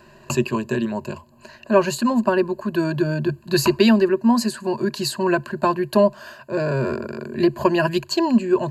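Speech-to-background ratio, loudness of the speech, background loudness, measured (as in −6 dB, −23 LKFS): 12.0 dB, −21.0 LKFS, −33.0 LKFS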